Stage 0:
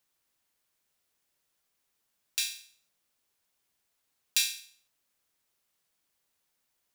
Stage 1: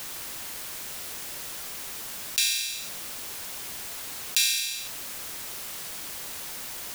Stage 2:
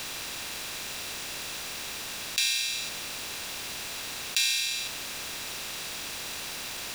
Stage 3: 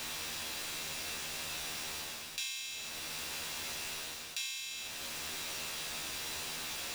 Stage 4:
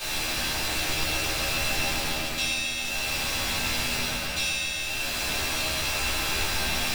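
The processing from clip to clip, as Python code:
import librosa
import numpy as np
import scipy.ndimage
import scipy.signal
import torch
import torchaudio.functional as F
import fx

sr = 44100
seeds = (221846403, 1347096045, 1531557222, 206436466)

y1 = fx.env_flatten(x, sr, amount_pct=70)
y1 = F.gain(torch.from_numpy(y1), 2.0).numpy()
y2 = fx.bin_compress(y1, sr, power=0.6)
y2 = fx.high_shelf(y2, sr, hz=7000.0, db=-11.0)
y3 = fx.rider(y2, sr, range_db=10, speed_s=0.5)
y3 = fx.comb_fb(y3, sr, f0_hz=79.0, decay_s=0.24, harmonics='all', damping=0.0, mix_pct=90)
y4 = fx.octave_divider(y3, sr, octaves=2, level_db=2.0)
y4 = fx.echo_wet_lowpass(y4, sr, ms=133, feedback_pct=77, hz=3200.0, wet_db=-5.0)
y4 = fx.room_shoebox(y4, sr, seeds[0], volume_m3=200.0, walls='mixed', distance_m=3.9)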